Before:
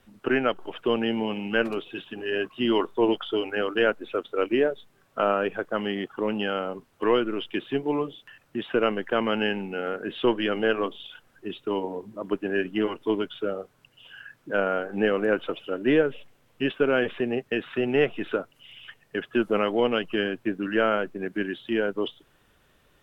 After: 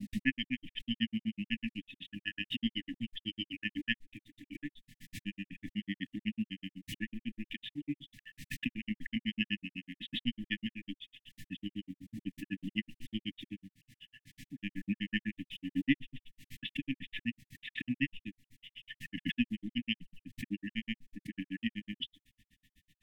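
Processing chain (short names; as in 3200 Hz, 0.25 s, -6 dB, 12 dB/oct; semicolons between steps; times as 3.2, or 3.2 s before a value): brick-wall FIR band-stop 300–1700 Hz; grains 71 ms, grains 8/s, pitch spread up and down by 0 st; backwards sustainer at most 55 dB/s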